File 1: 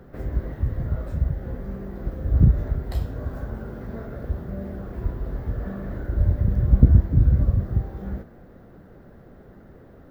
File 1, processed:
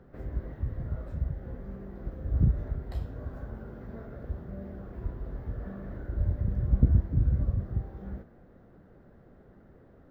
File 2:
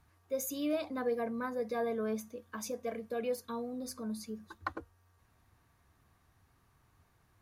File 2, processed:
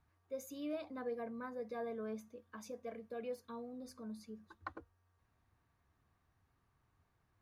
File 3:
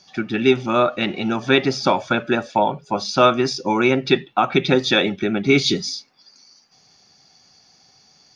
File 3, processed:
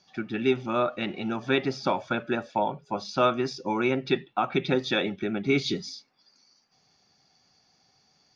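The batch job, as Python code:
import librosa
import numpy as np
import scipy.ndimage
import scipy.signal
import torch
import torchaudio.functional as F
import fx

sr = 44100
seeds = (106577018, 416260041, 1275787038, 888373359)

y = fx.high_shelf(x, sr, hz=5900.0, db=-10.0)
y = y * 10.0 ** (-8.0 / 20.0)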